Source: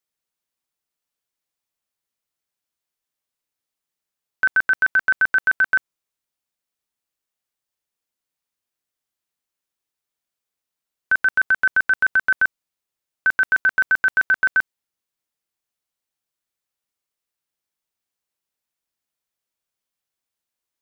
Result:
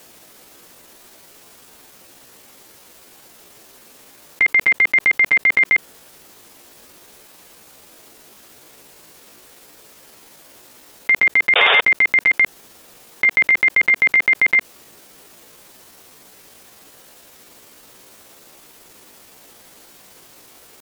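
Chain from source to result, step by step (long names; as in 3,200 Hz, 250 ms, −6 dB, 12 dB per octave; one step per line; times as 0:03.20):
loose part that buzzes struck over −43 dBFS, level −29 dBFS
parametric band 270 Hz +9 dB 2.4 octaves
sound drawn into the spectrogram noise, 0:11.57–0:11.82, 270–2,700 Hz −17 dBFS
pitch shifter +5.5 semitones
envelope flattener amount 70%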